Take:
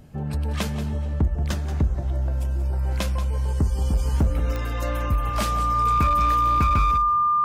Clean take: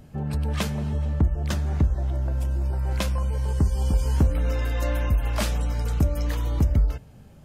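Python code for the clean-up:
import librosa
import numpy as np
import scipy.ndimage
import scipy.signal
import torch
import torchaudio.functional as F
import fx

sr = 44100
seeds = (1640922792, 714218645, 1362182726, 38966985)

y = fx.fix_declip(x, sr, threshold_db=-15.0)
y = fx.fix_declick_ar(y, sr, threshold=10.0)
y = fx.notch(y, sr, hz=1200.0, q=30.0)
y = fx.fix_echo_inverse(y, sr, delay_ms=181, level_db=-12.5)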